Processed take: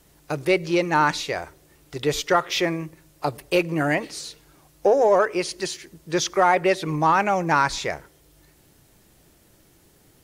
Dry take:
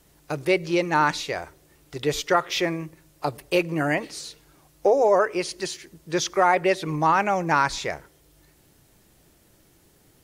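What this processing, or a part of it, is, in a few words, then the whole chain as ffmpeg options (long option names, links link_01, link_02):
parallel distortion: -filter_complex "[0:a]asplit=2[link_01][link_02];[link_02]asoftclip=type=hard:threshold=-19dB,volume=-13dB[link_03];[link_01][link_03]amix=inputs=2:normalize=0"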